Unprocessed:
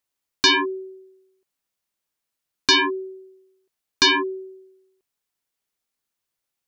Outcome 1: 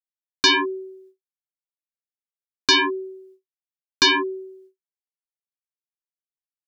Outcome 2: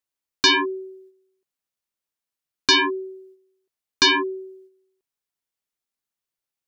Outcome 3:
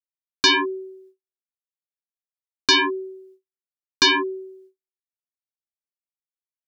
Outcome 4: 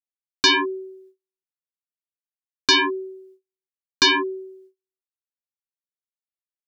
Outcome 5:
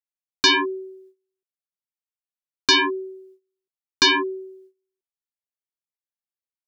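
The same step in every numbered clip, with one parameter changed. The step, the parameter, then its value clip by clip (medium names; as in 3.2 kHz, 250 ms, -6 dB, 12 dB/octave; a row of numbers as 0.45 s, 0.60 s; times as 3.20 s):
gate, range: -58 dB, -6 dB, -45 dB, -33 dB, -20 dB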